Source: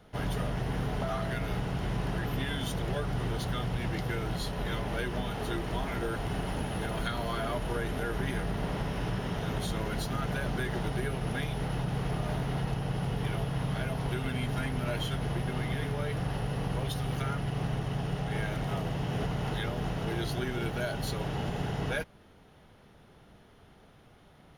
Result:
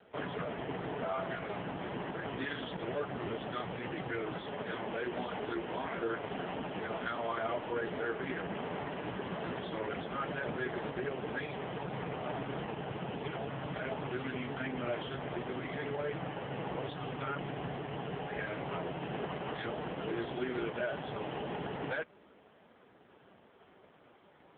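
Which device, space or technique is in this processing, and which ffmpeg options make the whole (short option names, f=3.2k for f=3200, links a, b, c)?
telephone: -af "highpass=250,lowpass=3.3k,asoftclip=type=tanh:threshold=-27.5dB,volume=3.5dB" -ar 8000 -c:a libopencore_amrnb -b:a 4750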